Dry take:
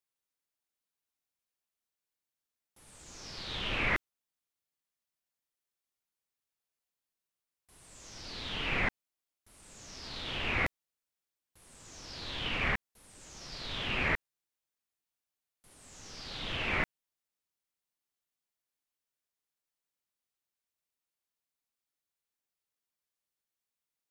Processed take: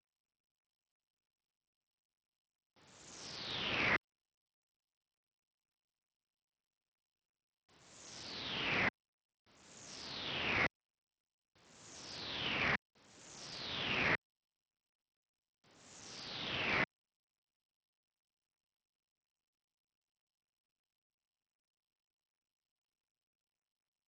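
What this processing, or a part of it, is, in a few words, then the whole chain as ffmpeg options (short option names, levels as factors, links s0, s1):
Bluetooth headset: -af "highpass=120,aresample=16000,aresample=44100,volume=0.708" -ar 44100 -c:a sbc -b:a 64k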